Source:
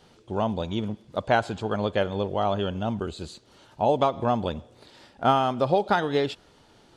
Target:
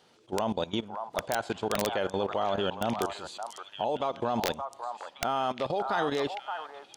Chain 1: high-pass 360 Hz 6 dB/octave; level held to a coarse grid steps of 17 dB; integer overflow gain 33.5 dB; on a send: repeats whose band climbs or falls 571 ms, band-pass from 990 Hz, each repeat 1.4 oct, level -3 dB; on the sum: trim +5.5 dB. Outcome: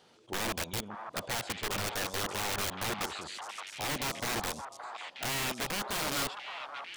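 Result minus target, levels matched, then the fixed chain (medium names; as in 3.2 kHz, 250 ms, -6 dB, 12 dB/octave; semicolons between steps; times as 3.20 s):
integer overflow: distortion +29 dB
high-pass 360 Hz 6 dB/octave; level held to a coarse grid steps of 17 dB; integer overflow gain 22 dB; on a send: repeats whose band climbs or falls 571 ms, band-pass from 990 Hz, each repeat 1.4 oct, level -3 dB; on the sum: trim +5.5 dB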